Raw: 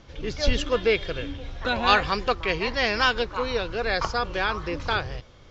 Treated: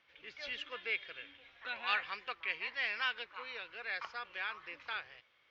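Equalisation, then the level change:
resonant band-pass 2,300 Hz, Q 1.9
high-frequency loss of the air 88 metres
−6.5 dB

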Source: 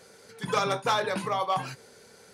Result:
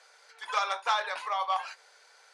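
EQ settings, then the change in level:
high-pass filter 730 Hz 24 dB per octave
high-frequency loss of the air 72 metres
0.0 dB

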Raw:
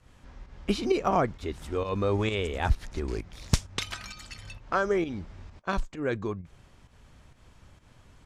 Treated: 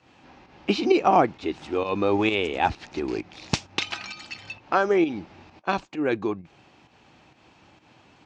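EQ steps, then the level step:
loudspeaker in its box 160–6,400 Hz, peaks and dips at 320 Hz +8 dB, 800 Hz +9 dB, 2,600 Hz +8 dB, 4,200 Hz +3 dB
+2.5 dB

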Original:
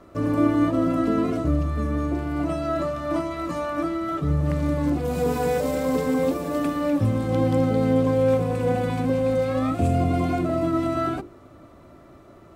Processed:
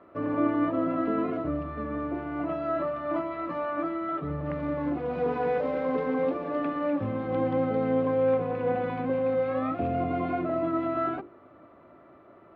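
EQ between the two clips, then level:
high-pass filter 470 Hz 6 dB per octave
low-pass filter 2,600 Hz 12 dB per octave
high-frequency loss of the air 250 metres
0.0 dB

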